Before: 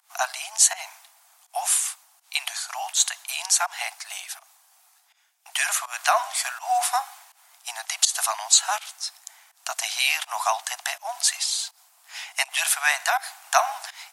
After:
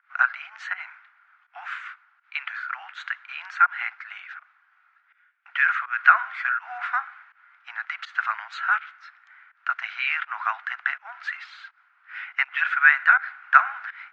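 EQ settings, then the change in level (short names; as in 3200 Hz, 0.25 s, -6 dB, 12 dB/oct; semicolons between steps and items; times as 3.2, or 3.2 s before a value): resonant high-pass 1400 Hz, resonance Q 7.7; synth low-pass 2100 Hz, resonance Q 2.4; air absorption 160 m; -7.5 dB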